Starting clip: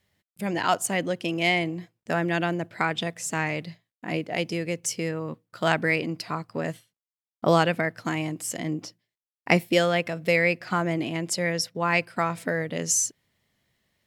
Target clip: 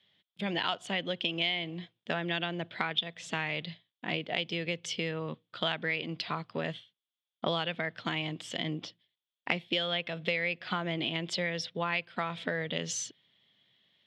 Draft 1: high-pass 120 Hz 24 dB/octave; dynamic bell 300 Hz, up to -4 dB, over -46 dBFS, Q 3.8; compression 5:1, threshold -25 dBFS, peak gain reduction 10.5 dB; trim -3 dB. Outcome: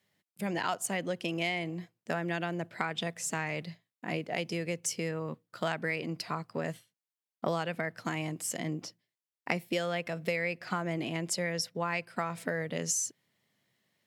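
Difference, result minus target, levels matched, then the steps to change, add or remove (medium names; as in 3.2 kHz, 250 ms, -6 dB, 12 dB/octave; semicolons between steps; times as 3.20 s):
4 kHz band -7.0 dB
add after dynamic bell: resonant low-pass 3.4 kHz, resonance Q 7.9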